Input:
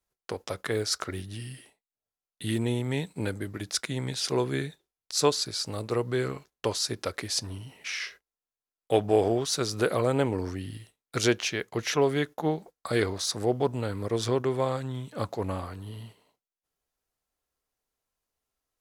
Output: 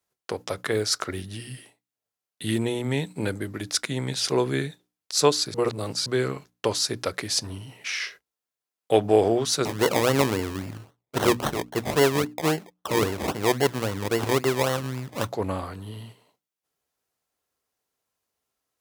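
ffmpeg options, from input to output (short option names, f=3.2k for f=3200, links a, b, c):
-filter_complex "[0:a]asettb=1/sr,asplit=3[a][b][c];[a]atrim=end=9.654[d];[b]atrim=start=9.65:end=15.29,asetpts=PTS-STARTPTS,afade=t=in:d=0.004:c=qsin,afade=t=out:st=5.636:d=0.004:c=qsin,acrusher=samples=25:mix=1:aa=0.000001:lfo=1:lforange=15:lforate=3.7[e];[c]atrim=start=15.286[f];[d][e]acrossfade=d=0.004:c1=hsin:c2=qsin[g];[g][f]acrossfade=d=0.004:c1=qsin:c2=hsin,asplit=3[h][i][j];[h]atrim=end=5.542[k];[i]atrim=start=5.538:end=6.062,asetpts=PTS-STARTPTS,areverse[l];[j]atrim=start=6.058[m];[k][l]acrossfade=d=0.004:c1=hsin:c2=hsin[n];[n][m]acrossfade=d=0.004:c1=hsin:c2=hsin,highpass=90,bandreject=f=60:t=h:w=6,bandreject=f=120:t=h:w=6,bandreject=f=180:t=h:w=6,bandreject=f=240:t=h:w=6,bandreject=f=300:t=h:w=6,volume=4dB"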